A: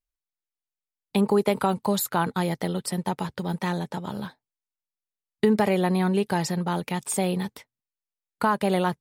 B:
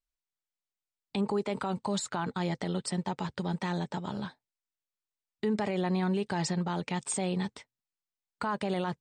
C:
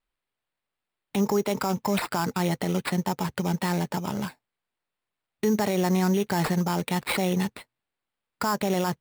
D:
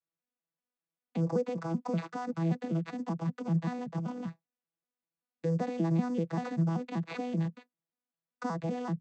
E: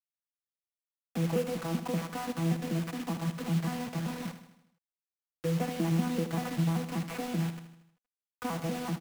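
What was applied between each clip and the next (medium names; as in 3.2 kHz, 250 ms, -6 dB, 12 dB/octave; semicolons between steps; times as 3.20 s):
elliptic low-pass 8.5 kHz, stop band 40 dB; band-stop 500 Hz, Q 12; peak limiter -20 dBFS, peak gain reduction 9 dB; trim -2 dB
sample-rate reducer 6.2 kHz, jitter 0%; trim +6 dB
vocoder on a broken chord bare fifth, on E3, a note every 193 ms; trim -5.5 dB
CVSD coder 16 kbps; bit crusher 7-bit; on a send: feedback delay 78 ms, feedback 53%, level -11 dB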